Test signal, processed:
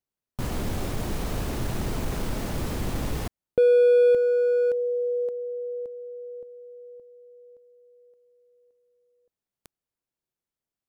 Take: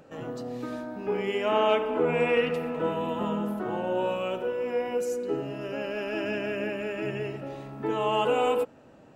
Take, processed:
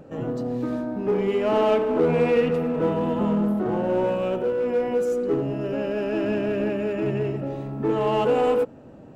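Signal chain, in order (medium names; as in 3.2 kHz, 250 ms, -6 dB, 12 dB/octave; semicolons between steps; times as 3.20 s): tilt shelf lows +6.5 dB, about 750 Hz; in parallel at -3.5 dB: hard clipper -27.5 dBFS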